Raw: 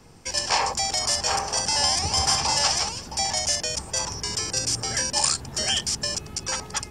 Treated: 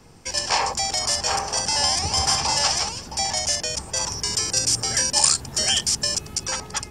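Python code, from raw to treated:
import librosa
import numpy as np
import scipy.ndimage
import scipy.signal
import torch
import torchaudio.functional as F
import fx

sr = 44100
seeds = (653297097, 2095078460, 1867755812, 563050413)

y = fx.high_shelf(x, sr, hz=5400.0, db=6.5, at=(4.01, 6.48))
y = y * librosa.db_to_amplitude(1.0)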